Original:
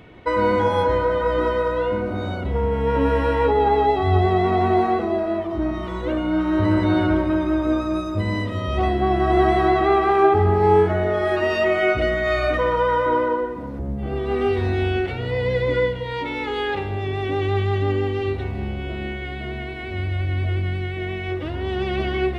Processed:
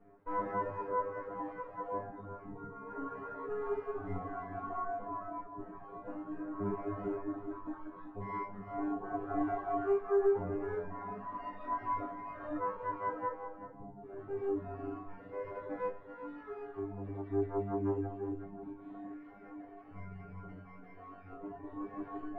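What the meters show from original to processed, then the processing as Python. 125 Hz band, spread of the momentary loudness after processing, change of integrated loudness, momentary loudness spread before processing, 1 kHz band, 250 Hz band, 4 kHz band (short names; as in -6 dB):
-23.5 dB, 14 LU, -17.5 dB, 10 LU, -17.0 dB, -17.0 dB, under -35 dB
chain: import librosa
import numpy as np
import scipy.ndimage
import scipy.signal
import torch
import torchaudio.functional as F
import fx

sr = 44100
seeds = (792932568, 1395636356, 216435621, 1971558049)

y = fx.lower_of_two(x, sr, delay_ms=4.3)
y = fx.comb_fb(y, sr, f0_hz=100.0, decay_s=0.69, harmonics='all', damping=0.0, mix_pct=100)
y = fx.dereverb_blind(y, sr, rt60_s=1.9)
y = y + 0.74 * np.pad(y, (int(7.1 * sr / 1000.0), 0))[:len(y)]
y = (np.kron(y[::6], np.eye(6)[0]) * 6)[:len(y)]
y = scipy.signal.sosfilt(scipy.signal.butter(4, 1400.0, 'lowpass', fs=sr, output='sos'), y)
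y = y + 10.0 ** (-11.0 / 20.0) * np.pad(y, (int(381 * sr / 1000.0), 0))[:len(y)]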